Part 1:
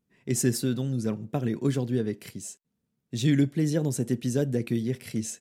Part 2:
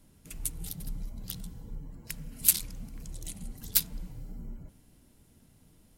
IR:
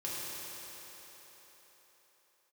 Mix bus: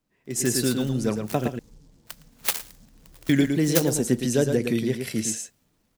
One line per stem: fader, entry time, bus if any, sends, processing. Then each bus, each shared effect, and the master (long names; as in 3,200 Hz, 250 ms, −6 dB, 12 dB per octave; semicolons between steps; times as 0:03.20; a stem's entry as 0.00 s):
−2.5 dB, 0.00 s, muted 0:01.48–0:03.29, no send, echo send −6.5 dB, no processing
−12.0 dB, 0.00 s, no send, echo send −20 dB, flat-topped bell 3,600 Hz +8.5 dB 2.3 octaves; short delay modulated by noise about 5,700 Hz, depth 0.17 ms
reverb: not used
echo: single-tap delay 112 ms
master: low-shelf EQ 240 Hz −10.5 dB; automatic gain control gain up to 10.5 dB; one half of a high-frequency compander decoder only